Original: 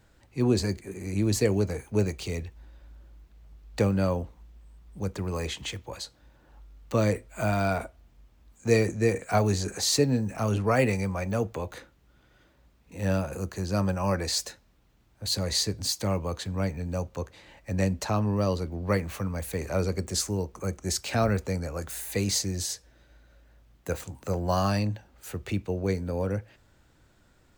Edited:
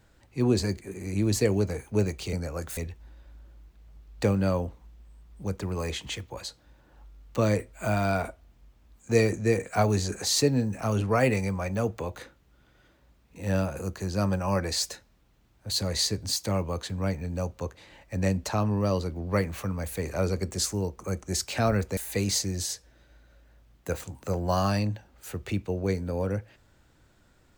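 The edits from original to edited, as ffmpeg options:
-filter_complex "[0:a]asplit=4[s0][s1][s2][s3];[s0]atrim=end=2.332[s4];[s1]atrim=start=21.528:end=21.972[s5];[s2]atrim=start=2.328:end=21.532[s6];[s3]atrim=start=21.968[s7];[s4][s5]acrossfade=d=0.004:c1=hsin:c2=hsin[s8];[s8][s6]acrossfade=d=0.004:c1=hsin:c2=hsin[s9];[s9][s7]acrossfade=d=0.004:c1=hsin:c2=hsin"

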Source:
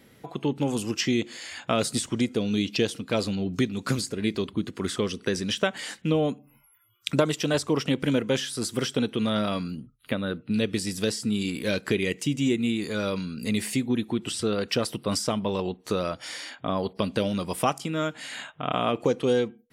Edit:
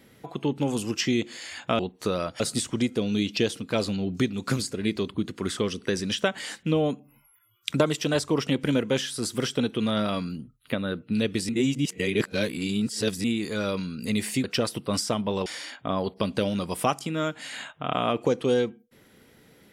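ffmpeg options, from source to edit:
-filter_complex "[0:a]asplit=7[s0][s1][s2][s3][s4][s5][s6];[s0]atrim=end=1.792[s7];[s1]atrim=start=15.638:end=16.252[s8];[s2]atrim=start=1.788:end=10.882[s9];[s3]atrim=start=10.878:end=12.632,asetpts=PTS-STARTPTS,areverse[s10];[s4]atrim=start=12.628:end=13.832[s11];[s5]atrim=start=14.618:end=15.642[s12];[s6]atrim=start=16.248[s13];[s7][s8]acrossfade=d=0.004:c1=hsin:c2=hsin[s14];[s14][s9]acrossfade=d=0.004:c1=hsin:c2=hsin[s15];[s15][s10]acrossfade=d=0.004:c1=hsin:c2=hsin[s16];[s16][s11]acrossfade=d=0.004:c1=hsin:c2=hsin[s17];[s17][s12]acrossfade=d=0.004:c1=hsin:c2=hsin[s18];[s18][s13]acrossfade=d=0.004:c1=hsin:c2=hsin"

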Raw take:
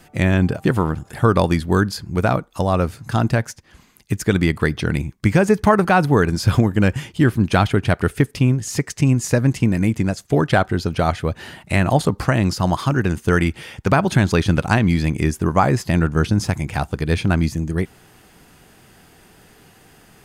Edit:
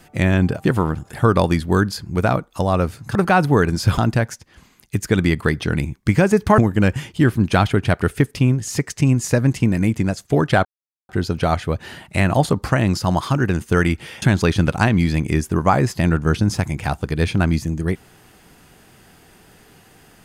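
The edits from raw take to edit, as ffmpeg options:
-filter_complex "[0:a]asplit=6[s0][s1][s2][s3][s4][s5];[s0]atrim=end=3.152[s6];[s1]atrim=start=5.748:end=6.582[s7];[s2]atrim=start=3.148:end=5.752[s8];[s3]atrim=start=6.578:end=10.65,asetpts=PTS-STARTPTS,afade=t=out:st=4.068:d=0.004:c=hsin,apad=pad_dur=0.44[s9];[s4]atrim=start=10.65:end=13.782,asetpts=PTS-STARTPTS,afade=t=in:d=0.004:c=hsin[s10];[s5]atrim=start=14.118[s11];[s6][s7]acrossfade=d=0.004:c1=hsin:c2=hsin[s12];[s12][s8]acrossfade=d=0.004:c1=hsin:c2=hsin[s13];[s9][s10]concat=n=2:v=0:a=1[s14];[s13][s14]acrossfade=d=0.004:c1=hsin:c2=hsin[s15];[s15][s11]acrossfade=d=0.004:c1=hsin:c2=hsin"

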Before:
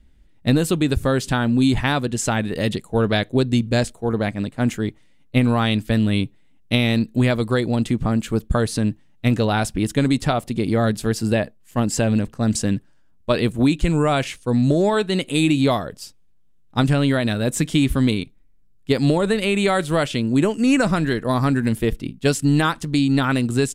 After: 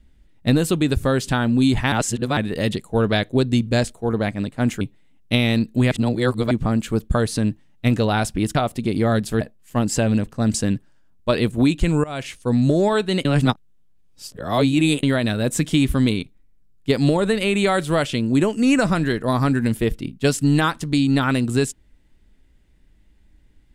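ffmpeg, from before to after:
-filter_complex "[0:a]asplit=11[s0][s1][s2][s3][s4][s5][s6][s7][s8][s9][s10];[s0]atrim=end=1.922[s11];[s1]atrim=start=1.918:end=2.372,asetpts=PTS-STARTPTS,areverse[s12];[s2]atrim=start=2.368:end=4.812[s13];[s3]atrim=start=6.208:end=7.312[s14];[s4]atrim=start=7.308:end=7.912,asetpts=PTS-STARTPTS,areverse[s15];[s5]atrim=start=7.908:end=9.952[s16];[s6]atrim=start=10.268:end=11.132[s17];[s7]atrim=start=11.418:end=14.05,asetpts=PTS-STARTPTS,afade=t=out:st=2.628:d=0.004:c=hsin:silence=0.0794328[s18];[s8]atrim=start=14.05:end=15.262,asetpts=PTS-STARTPTS,afade=t=in:d=0.36:silence=0.0794328[s19];[s9]atrim=start=15.258:end=17.042,asetpts=PTS-STARTPTS,areverse[s20];[s10]atrim=start=17.038[s21];[s11][s12]acrossfade=d=0.004:c1=hsin:c2=hsin[s22];[s22][s13]acrossfade=d=0.004:c1=hsin:c2=hsin[s23];[s23][s14]acrossfade=d=0.004:c1=hsin:c2=hsin[s24];[s24][s15]acrossfade=d=0.004:c1=hsin:c2=hsin[s25];[s25][s16]acrossfade=d=0.004:c1=hsin:c2=hsin[s26];[s26][s17]acrossfade=d=0.004:c1=hsin:c2=hsin[s27];[s18][s19]concat=n=2:v=0:a=1[s28];[s27][s28]acrossfade=d=0.004:c1=hsin:c2=hsin[s29];[s29][s20]acrossfade=d=0.004:c1=hsin:c2=hsin[s30];[s30][s21]acrossfade=d=0.004:c1=hsin:c2=hsin"

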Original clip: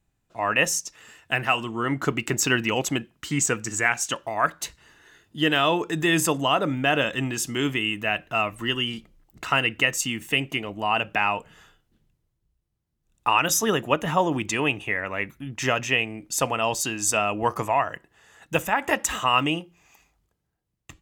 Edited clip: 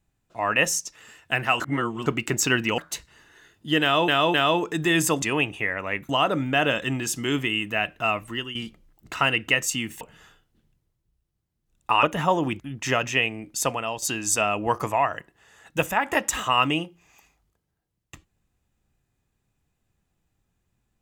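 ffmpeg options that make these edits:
-filter_complex "[0:a]asplit=13[s0][s1][s2][s3][s4][s5][s6][s7][s8][s9][s10][s11][s12];[s0]atrim=end=1.602[s13];[s1]atrim=start=1.598:end=2.062,asetpts=PTS-STARTPTS,areverse[s14];[s2]atrim=start=2.058:end=2.782[s15];[s3]atrim=start=4.478:end=5.782[s16];[s4]atrim=start=5.518:end=5.782[s17];[s5]atrim=start=5.518:end=6.402[s18];[s6]atrim=start=14.488:end=15.362[s19];[s7]atrim=start=6.398:end=8.86,asetpts=PTS-STARTPTS,afade=t=out:st=2.102:d=0.36:silence=0.237137[s20];[s8]atrim=start=8.86:end=10.322,asetpts=PTS-STARTPTS,afade=t=in:d=0.004:c=hsin:silence=0.237137[s21];[s9]atrim=start=11.378:end=13.402[s22];[s10]atrim=start=13.918:end=14.492[s23];[s11]atrim=start=15.358:end=16.78,asetpts=PTS-STARTPTS,afade=t=out:st=0.992:d=0.43:silence=0.334965[s24];[s12]atrim=start=16.78,asetpts=PTS-STARTPTS,afade=t=in:d=0.004:c=hsin:silence=0.334965[s25];[s13][s14]acrossfade=d=0.004:c1=hsin:c2=hsin[s26];[s26][s15]acrossfade=d=0.004:c1=hsin:c2=hsin[s27];[s27][s16]acrossfade=d=0.004:c1=hsin:c2=hsin[s28];[s28][s17]acrossfade=d=0.004:c1=hsin:c2=hsin[s29];[s29][s18]acrossfade=d=0.004:c1=hsin:c2=hsin[s30];[s30][s19]acrossfade=d=0.004:c1=hsin:c2=hsin[s31];[s20][s21]concat=n=2:v=0:a=1[s32];[s31][s32]acrossfade=d=0.004:c1=hsin:c2=hsin[s33];[s33][s22]acrossfade=d=0.004:c1=hsin:c2=hsin[s34];[s34][s23]acrossfade=d=0.004:c1=hsin:c2=hsin[s35];[s24][s25]concat=n=2:v=0:a=1[s36];[s35][s36]acrossfade=d=0.004:c1=hsin:c2=hsin"

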